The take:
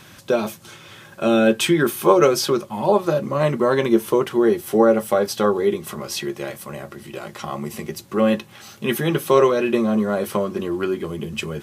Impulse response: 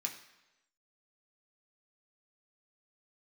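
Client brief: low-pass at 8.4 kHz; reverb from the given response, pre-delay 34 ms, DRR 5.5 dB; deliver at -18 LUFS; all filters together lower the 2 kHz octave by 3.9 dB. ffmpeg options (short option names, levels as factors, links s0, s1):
-filter_complex "[0:a]lowpass=8400,equalizer=f=2000:t=o:g=-5.5,asplit=2[s0][s1];[1:a]atrim=start_sample=2205,adelay=34[s2];[s1][s2]afir=irnorm=-1:irlink=0,volume=0.531[s3];[s0][s3]amix=inputs=2:normalize=0,volume=1.26"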